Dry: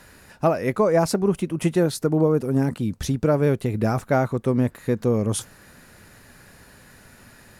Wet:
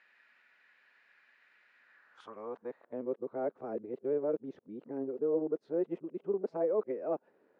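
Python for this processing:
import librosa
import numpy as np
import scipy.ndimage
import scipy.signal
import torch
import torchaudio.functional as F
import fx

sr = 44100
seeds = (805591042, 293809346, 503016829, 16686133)

y = np.flip(x).copy()
y = fx.bandpass_edges(y, sr, low_hz=240.0, high_hz=3500.0)
y = fx.filter_sweep_bandpass(y, sr, from_hz=2200.0, to_hz=430.0, start_s=1.76, end_s=3.19, q=1.9)
y = y * 10.0 ** (-8.5 / 20.0)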